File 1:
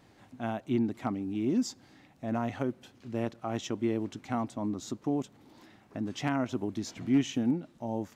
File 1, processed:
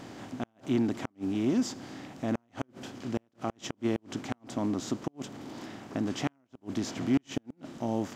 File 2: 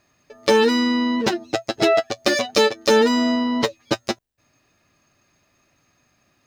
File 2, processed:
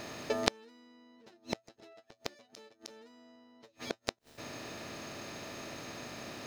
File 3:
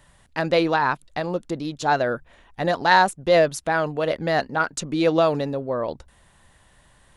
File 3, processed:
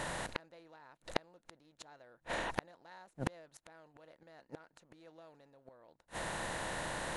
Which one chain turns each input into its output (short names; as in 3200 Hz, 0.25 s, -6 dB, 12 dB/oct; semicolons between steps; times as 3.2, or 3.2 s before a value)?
per-bin compression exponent 0.6; flipped gate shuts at -16 dBFS, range -40 dB; gain -1 dB